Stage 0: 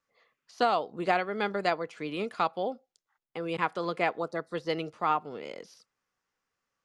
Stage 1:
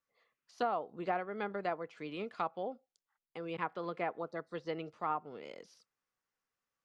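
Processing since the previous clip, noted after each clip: low-pass that closes with the level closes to 1.6 kHz, closed at -24.5 dBFS; trim -7.5 dB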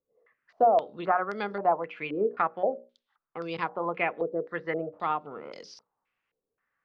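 hum notches 60/120/180/240/300/360/420/480/540/600 Hz; step-sequenced low-pass 3.8 Hz 450–5100 Hz; trim +5.5 dB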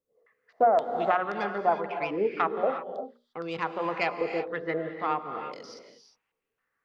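self-modulated delay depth 0.075 ms; gated-style reverb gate 380 ms rising, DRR 7 dB

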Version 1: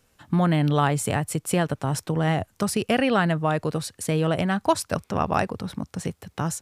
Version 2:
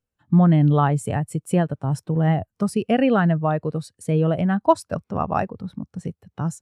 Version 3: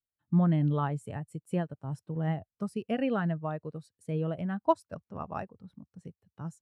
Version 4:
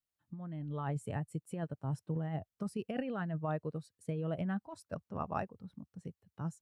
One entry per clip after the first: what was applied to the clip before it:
spectral contrast expander 1.5:1; trim +3 dB
band-stop 740 Hz, Q 17; upward expansion 1.5:1, over -33 dBFS; trim -8 dB
compressor with a negative ratio -33 dBFS, ratio -1; trim -3.5 dB

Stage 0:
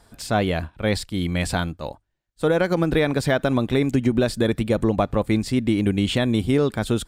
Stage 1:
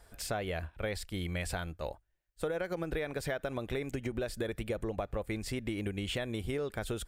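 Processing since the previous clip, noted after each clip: graphic EQ 125/250/1000/4000/8000 Hz -8/-12/-7/-7/-4 dB; compression, threshold -32 dBFS, peak gain reduction 11 dB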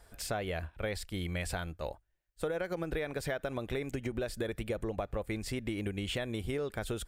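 no audible change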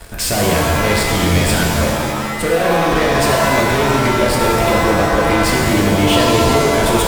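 waveshaping leveller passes 5; pitch-shifted reverb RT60 1.8 s, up +7 st, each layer -2 dB, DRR -1.5 dB; trim +5 dB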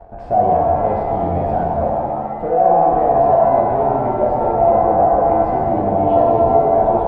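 resonant low-pass 740 Hz, resonance Q 9.1; trim -8 dB

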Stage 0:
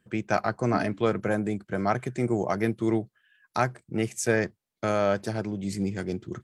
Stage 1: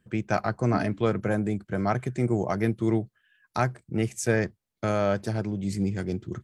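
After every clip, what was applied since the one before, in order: bass shelf 140 Hz +9.5 dB; trim -1.5 dB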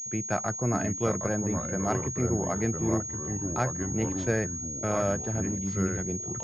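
ever faster or slower copies 683 ms, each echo -3 st, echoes 3, each echo -6 dB; class-D stage that switches slowly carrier 6.6 kHz; trim -3.5 dB

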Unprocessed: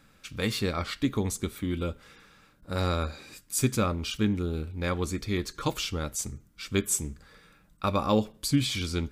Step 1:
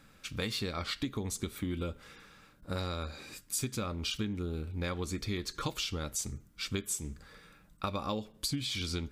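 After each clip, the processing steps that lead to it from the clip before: dynamic bell 4 kHz, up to +5 dB, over -44 dBFS, Q 1.1; compression 10:1, threshold -31 dBFS, peak gain reduction 13.5 dB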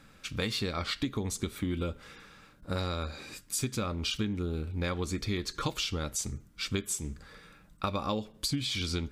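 treble shelf 12 kHz -7 dB; trim +3 dB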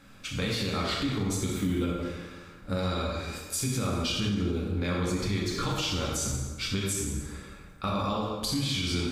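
plate-style reverb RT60 1.5 s, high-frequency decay 0.65×, DRR -3 dB; peak limiter -20 dBFS, peak gain reduction 5.5 dB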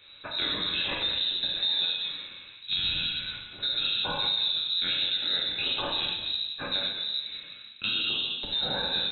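frequency inversion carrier 3.9 kHz

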